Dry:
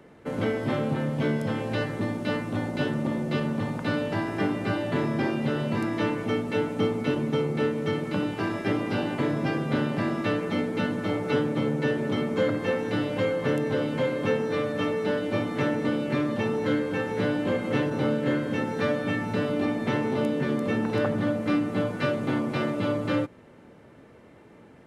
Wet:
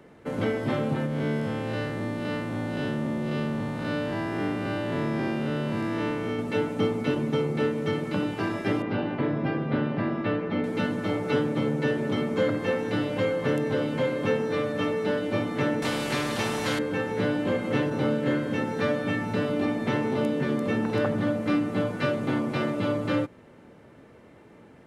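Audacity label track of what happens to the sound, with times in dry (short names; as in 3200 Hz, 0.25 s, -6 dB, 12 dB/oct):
1.060000	6.390000	time blur width 0.154 s
8.820000	10.640000	air absorption 270 m
15.820000	16.790000	spectral compressor 2:1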